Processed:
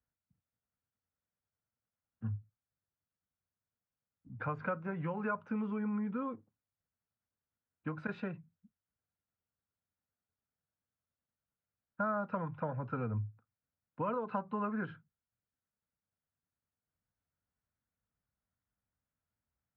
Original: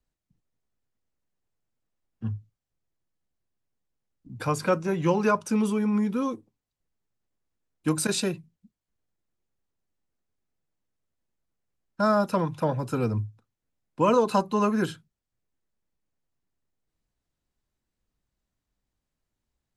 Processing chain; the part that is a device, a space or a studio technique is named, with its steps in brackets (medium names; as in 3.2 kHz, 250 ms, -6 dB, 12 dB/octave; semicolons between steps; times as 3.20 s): bass amplifier (compression 5:1, threshold -25 dBFS, peak gain reduction 8.5 dB; cabinet simulation 66–2200 Hz, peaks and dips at 91 Hz +6 dB, 350 Hz -10 dB, 1.4 kHz +6 dB); trim -7 dB